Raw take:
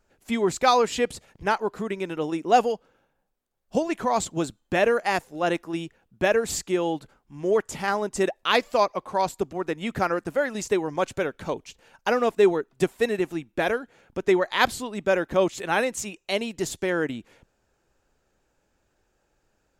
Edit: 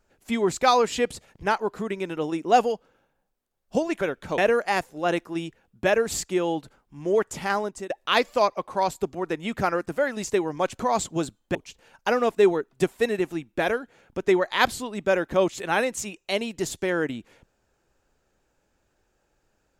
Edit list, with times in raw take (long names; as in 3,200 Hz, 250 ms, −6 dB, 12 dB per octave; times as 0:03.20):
0:04.01–0:04.76: swap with 0:11.18–0:11.55
0:07.97–0:08.28: fade out, to −23.5 dB